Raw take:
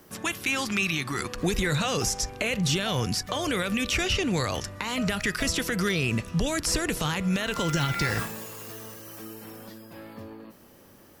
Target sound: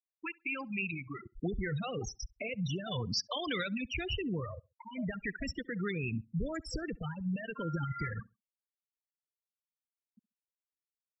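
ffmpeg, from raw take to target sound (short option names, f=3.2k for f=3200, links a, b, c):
-filter_complex "[0:a]asplit=3[a][b][c];[a]afade=t=out:st=2.91:d=0.02[d];[b]equalizer=f=4.2k:w=0.33:g=7,afade=t=in:st=2.91:d=0.02,afade=t=out:st=3.72:d=0.02[e];[c]afade=t=in:st=3.72:d=0.02[f];[d][e][f]amix=inputs=3:normalize=0,afftfilt=real='re*gte(hypot(re,im),0.141)':imag='im*gte(hypot(re,im),0.141)':win_size=1024:overlap=0.75,asplit=2[g][h];[h]adelay=67,lowpass=f=2k:p=1,volume=-24dB,asplit=2[i][j];[j]adelay=67,lowpass=f=2k:p=1,volume=0.28[k];[g][i][k]amix=inputs=3:normalize=0,volume=-8dB"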